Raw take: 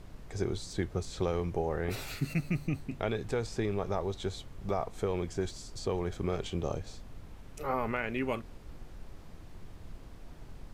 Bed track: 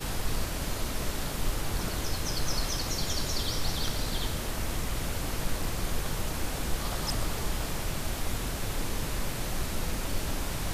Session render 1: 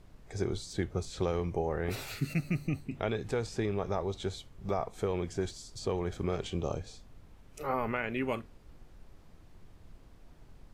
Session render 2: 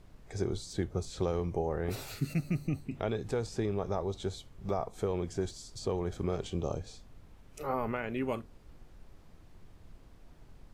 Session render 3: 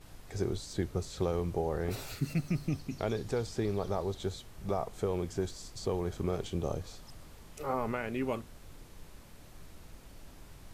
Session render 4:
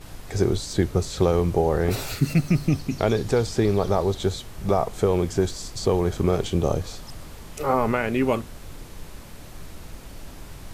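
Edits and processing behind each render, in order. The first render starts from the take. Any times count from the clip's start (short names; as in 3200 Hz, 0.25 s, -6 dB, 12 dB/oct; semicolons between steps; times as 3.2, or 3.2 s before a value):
noise print and reduce 7 dB
dynamic EQ 2200 Hz, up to -6 dB, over -51 dBFS, Q 0.98
add bed track -22.5 dB
gain +11.5 dB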